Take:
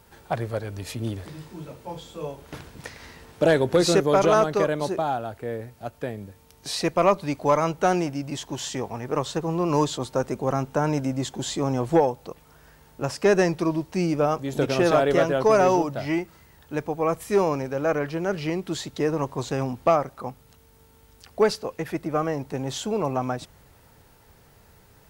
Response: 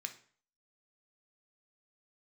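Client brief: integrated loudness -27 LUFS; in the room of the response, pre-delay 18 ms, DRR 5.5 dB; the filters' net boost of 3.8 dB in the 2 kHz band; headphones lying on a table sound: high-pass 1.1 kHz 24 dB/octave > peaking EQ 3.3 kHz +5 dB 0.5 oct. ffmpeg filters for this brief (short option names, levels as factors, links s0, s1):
-filter_complex "[0:a]equalizer=f=2000:t=o:g=4.5,asplit=2[s0][s1];[1:a]atrim=start_sample=2205,adelay=18[s2];[s1][s2]afir=irnorm=-1:irlink=0,volume=0.631[s3];[s0][s3]amix=inputs=2:normalize=0,highpass=f=1100:w=0.5412,highpass=f=1100:w=1.3066,equalizer=f=3300:t=o:w=0.5:g=5,volume=1.41"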